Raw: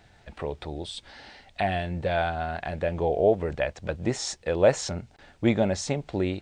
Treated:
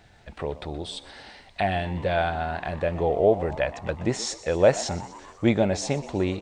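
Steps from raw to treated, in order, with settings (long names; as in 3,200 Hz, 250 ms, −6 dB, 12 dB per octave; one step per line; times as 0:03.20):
echo with shifted repeats 123 ms, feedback 62%, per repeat +99 Hz, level −17 dB
level +1.5 dB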